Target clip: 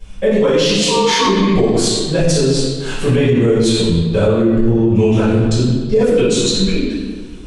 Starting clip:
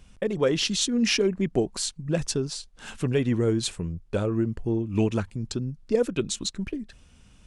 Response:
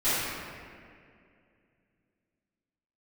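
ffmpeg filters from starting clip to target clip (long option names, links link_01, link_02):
-filter_complex "[0:a]asplit=3[link_01][link_02][link_03];[link_01]afade=type=out:start_time=0.75:duration=0.02[link_04];[link_02]aeval=exprs='val(0)*sin(2*PI*690*n/s)':channel_layout=same,afade=type=in:start_time=0.75:duration=0.02,afade=type=out:start_time=1.25:duration=0.02[link_05];[link_03]afade=type=in:start_time=1.25:duration=0.02[link_06];[link_04][link_05][link_06]amix=inputs=3:normalize=0[link_07];[1:a]atrim=start_sample=2205,asetrate=74970,aresample=44100[link_08];[link_07][link_08]afir=irnorm=-1:irlink=0,alimiter=level_in=10dB:limit=-1dB:release=50:level=0:latency=1,volume=-4dB"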